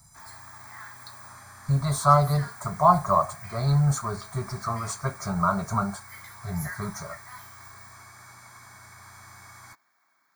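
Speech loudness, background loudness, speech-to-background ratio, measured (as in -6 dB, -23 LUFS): -25.5 LUFS, -44.0 LUFS, 18.5 dB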